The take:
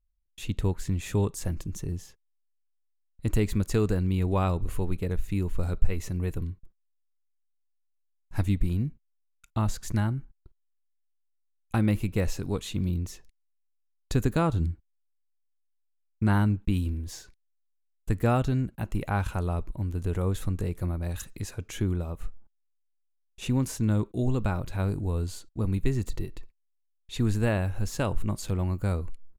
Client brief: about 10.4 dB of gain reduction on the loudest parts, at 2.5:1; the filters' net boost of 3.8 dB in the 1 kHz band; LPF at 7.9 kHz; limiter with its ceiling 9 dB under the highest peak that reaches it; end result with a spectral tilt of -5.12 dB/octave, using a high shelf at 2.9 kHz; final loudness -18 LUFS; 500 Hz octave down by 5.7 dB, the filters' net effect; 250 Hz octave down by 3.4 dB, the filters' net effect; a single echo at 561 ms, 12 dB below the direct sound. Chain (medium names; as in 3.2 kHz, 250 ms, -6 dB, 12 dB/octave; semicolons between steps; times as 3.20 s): low-pass 7.9 kHz; peaking EQ 250 Hz -3 dB; peaking EQ 500 Hz -8.5 dB; peaking EQ 1 kHz +7 dB; treble shelf 2.9 kHz +6 dB; compression 2.5:1, threshold -28 dBFS; peak limiter -23.5 dBFS; delay 561 ms -12 dB; trim +17.5 dB